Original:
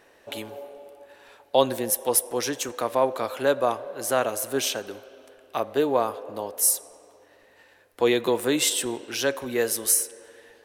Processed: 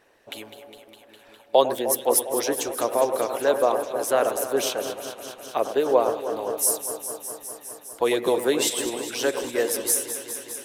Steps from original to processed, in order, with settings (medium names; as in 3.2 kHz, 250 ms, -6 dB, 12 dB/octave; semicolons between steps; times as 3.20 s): echo whose repeats swap between lows and highs 102 ms, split 2.1 kHz, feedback 90%, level -9 dB; harmonic-percussive split harmonic -10 dB; dynamic bell 490 Hz, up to +7 dB, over -39 dBFS, Q 0.9